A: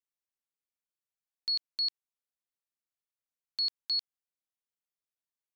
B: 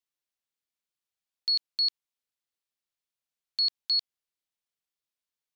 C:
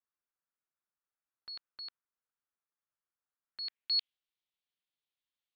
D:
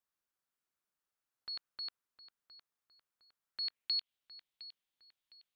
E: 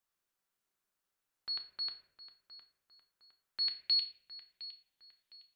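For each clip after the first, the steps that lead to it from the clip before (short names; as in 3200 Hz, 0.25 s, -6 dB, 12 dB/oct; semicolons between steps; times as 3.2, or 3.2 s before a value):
bell 3700 Hz +5 dB 1.5 oct
dynamic EQ 3300 Hz, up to +7 dB, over -40 dBFS, Q 0.91; low-pass sweep 1400 Hz -> 3500 Hz, 3.45–4.13; gain -5 dB
compressor, threshold -35 dBFS, peak gain reduction 8 dB; darkening echo 0.71 s, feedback 41%, low-pass 4300 Hz, level -13.5 dB; gain +2.5 dB
reverb RT60 0.70 s, pre-delay 5 ms, DRR 6 dB; gain +2.5 dB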